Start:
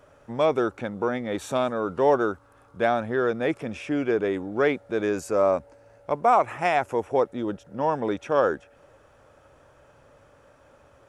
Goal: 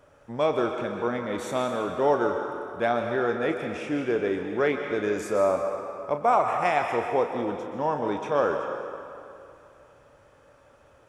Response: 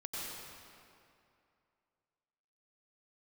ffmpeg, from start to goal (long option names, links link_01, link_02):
-filter_complex "[0:a]asplit=2[link_01][link_02];[1:a]atrim=start_sample=2205,lowshelf=frequency=400:gain=-9.5,adelay=34[link_03];[link_02][link_03]afir=irnorm=-1:irlink=0,volume=-3dB[link_04];[link_01][link_04]amix=inputs=2:normalize=0,volume=-2.5dB"